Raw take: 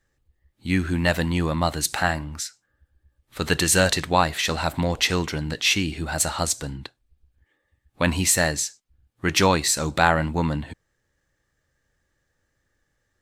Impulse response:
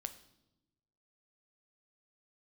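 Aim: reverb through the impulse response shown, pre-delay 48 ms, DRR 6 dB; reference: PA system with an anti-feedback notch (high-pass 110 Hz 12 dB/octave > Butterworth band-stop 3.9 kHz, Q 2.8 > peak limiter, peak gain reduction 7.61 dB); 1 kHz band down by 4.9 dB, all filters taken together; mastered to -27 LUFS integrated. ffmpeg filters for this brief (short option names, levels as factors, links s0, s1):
-filter_complex "[0:a]equalizer=f=1000:t=o:g=-6.5,asplit=2[s0][s1];[1:a]atrim=start_sample=2205,adelay=48[s2];[s1][s2]afir=irnorm=-1:irlink=0,volume=0.668[s3];[s0][s3]amix=inputs=2:normalize=0,highpass=110,asuperstop=centerf=3900:order=8:qfactor=2.8,volume=0.75,alimiter=limit=0.224:level=0:latency=1"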